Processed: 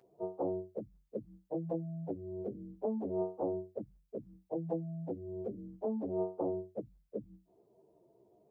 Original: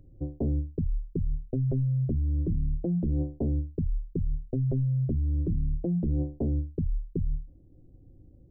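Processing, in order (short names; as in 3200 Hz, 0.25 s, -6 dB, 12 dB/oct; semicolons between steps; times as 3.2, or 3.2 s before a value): pitch shift by moving bins +4 st; HPF 580 Hz 12 dB/oct; gain +7.5 dB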